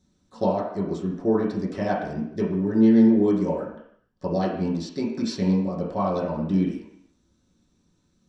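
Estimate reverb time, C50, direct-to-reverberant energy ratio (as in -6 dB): 0.70 s, 4.0 dB, -8.5 dB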